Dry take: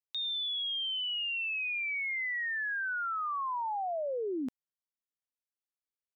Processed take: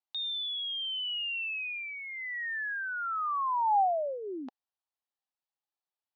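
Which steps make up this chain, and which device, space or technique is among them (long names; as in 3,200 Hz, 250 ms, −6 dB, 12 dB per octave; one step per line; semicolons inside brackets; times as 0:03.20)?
phone earpiece (loudspeaker in its box 450–4,300 Hz, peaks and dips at 470 Hz −7 dB, 800 Hz +8 dB, 1,500 Hz −4 dB, 2,200 Hz −10 dB, 3,300 Hz −3 dB)
level +3.5 dB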